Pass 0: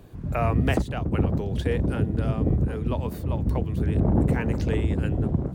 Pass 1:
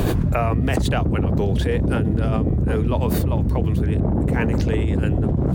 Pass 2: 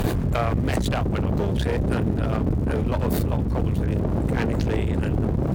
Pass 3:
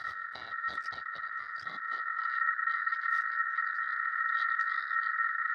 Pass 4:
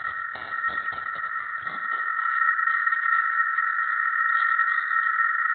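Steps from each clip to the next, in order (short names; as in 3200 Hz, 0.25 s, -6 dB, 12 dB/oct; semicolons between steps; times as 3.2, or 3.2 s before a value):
fast leveller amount 100%; gain -1 dB
crackle 350/s -40 dBFS; one-sided clip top -28.5 dBFS
vowel filter i; ring modulator 1600 Hz; high-pass sweep 84 Hz -> 1500 Hz, 1.55–2.32
feedback echo 98 ms, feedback 28%, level -9.5 dB; gain +8 dB; µ-law 64 kbps 8000 Hz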